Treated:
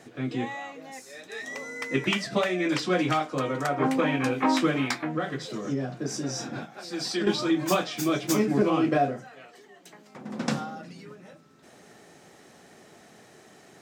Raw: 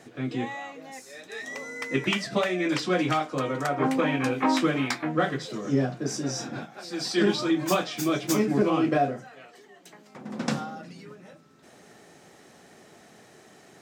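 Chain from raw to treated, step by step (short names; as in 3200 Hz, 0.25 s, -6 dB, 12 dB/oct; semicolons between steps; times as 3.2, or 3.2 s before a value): 4.97–7.27 compressor 4:1, threshold -26 dBFS, peak gain reduction 7.5 dB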